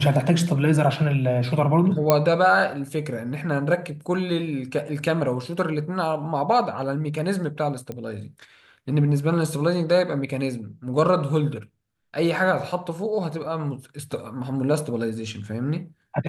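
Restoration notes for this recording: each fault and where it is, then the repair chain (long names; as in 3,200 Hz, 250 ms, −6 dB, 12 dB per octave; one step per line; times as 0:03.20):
0:02.10: click −3 dBFS
0:07.92: click −20 dBFS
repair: click removal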